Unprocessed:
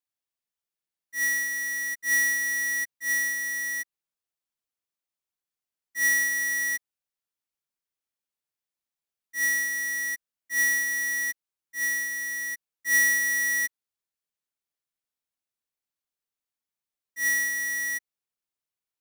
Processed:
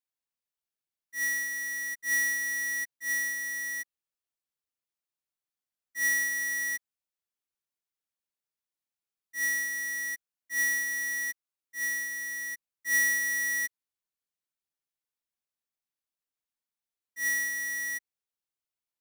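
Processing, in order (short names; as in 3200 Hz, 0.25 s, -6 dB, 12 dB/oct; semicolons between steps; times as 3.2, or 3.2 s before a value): 11.14–11.85 HPF 150 Hz; gain -4 dB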